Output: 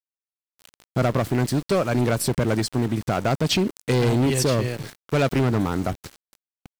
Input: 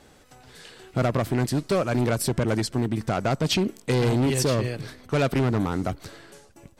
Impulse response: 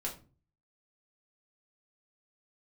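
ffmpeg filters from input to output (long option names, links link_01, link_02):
-af "aeval=exprs='val(0)*gte(abs(val(0)),0.0141)':channel_layout=same,volume=2dB"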